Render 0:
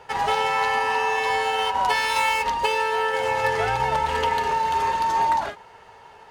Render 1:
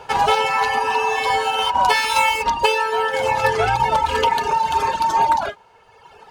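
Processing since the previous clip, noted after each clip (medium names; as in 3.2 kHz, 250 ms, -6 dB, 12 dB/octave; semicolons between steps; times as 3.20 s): band-stop 1.9 kHz, Q 6.7; reverb removal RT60 1.5 s; trim +7.5 dB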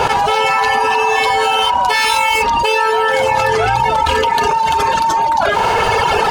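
level flattener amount 100%; trim -1 dB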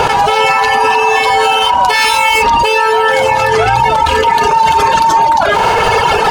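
peak limiter -7.5 dBFS, peak gain reduction 5.5 dB; reverberation RT60 1.8 s, pre-delay 6 ms, DRR 19 dB; trim +5.5 dB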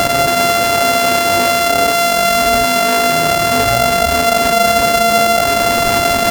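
sorted samples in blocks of 64 samples; trim -2.5 dB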